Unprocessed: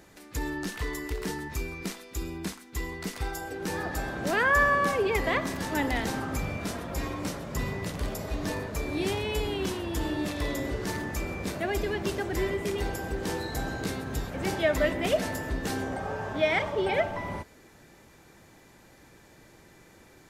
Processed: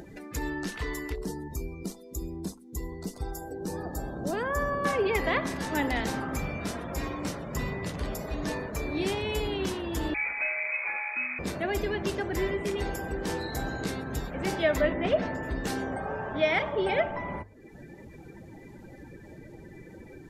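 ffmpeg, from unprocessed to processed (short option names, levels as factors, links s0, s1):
-filter_complex "[0:a]asettb=1/sr,asplit=3[s0][s1][s2];[s0]atrim=end=1.154[s3];[s1]atrim=start=1.15:end=4.85,asetpts=PTS-STARTPTS,afade=t=in:d=0.004:c=qsin,afade=t=out:st=3.696:d=0.004:c=qsin,equalizer=f=2000:w=0.7:g=-13[s4];[s2]atrim=start=4.846[s5];[s3][s4]acrossfade=d=0.004:c1=hsin:c2=qsin[s6];[s6][s5]acrossfade=d=0.004:c1=qsin:c2=hsin,asettb=1/sr,asplit=3[s7][s8][s9];[s7]atrim=end=10.144[s10];[s8]atrim=start=10.14:end=11.39,asetpts=PTS-STARTPTS,afade=t=in:d=0.004:c=qsin,afade=t=out:st=1.246:d=0.004:c=qsin,lowpass=f=2200:t=q:w=0.5098,lowpass=f=2200:t=q:w=0.6013,lowpass=f=2200:t=q:w=0.9,lowpass=f=2200:t=q:w=2.563,afreqshift=-2600[s11];[s9]atrim=start=11.386[s12];[s10][s11]acrossfade=d=0.004:c1=hsin:c2=qsin[s13];[s13][s12]acrossfade=d=0.004:c1=qsin:c2=hsin,asettb=1/sr,asplit=3[s14][s15][s16];[s14]atrim=end=14.814[s17];[s15]atrim=start=14.81:end=15.43,asetpts=PTS-STARTPTS,afade=t=in:d=0.004:c=qsin,afade=t=out:st=0.616:d=0.004:c=qsin,aemphasis=mode=reproduction:type=75fm[s18];[s16]atrim=start=15.426[s19];[s17][s18]acrossfade=d=0.004:c1=hsin:c2=qsin[s20];[s20][s19]acrossfade=d=0.004:c1=qsin:c2=hsin,afftdn=nr=20:nf=-50,bandreject=f=50:t=h:w=6,bandreject=f=100:t=h:w=6,acompressor=mode=upward:threshold=0.02:ratio=2.5"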